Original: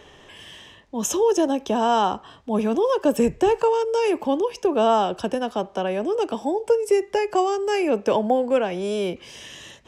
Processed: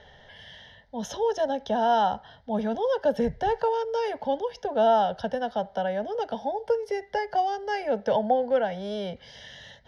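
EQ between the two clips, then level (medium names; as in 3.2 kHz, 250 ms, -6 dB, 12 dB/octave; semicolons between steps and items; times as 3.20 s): distance through air 80 m; static phaser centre 1.7 kHz, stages 8; 0.0 dB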